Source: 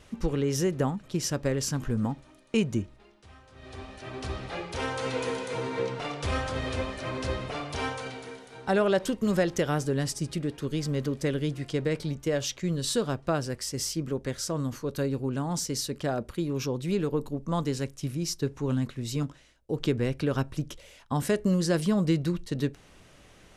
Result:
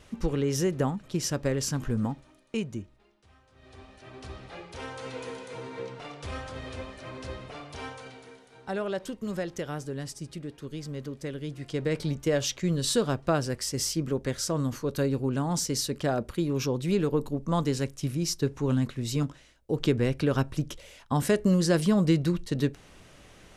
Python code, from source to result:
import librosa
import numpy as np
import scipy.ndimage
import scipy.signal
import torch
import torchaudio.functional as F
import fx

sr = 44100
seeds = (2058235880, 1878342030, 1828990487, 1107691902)

y = fx.gain(x, sr, db=fx.line((2.0, 0.0), (2.76, -7.5), (11.39, -7.5), (12.04, 2.0)))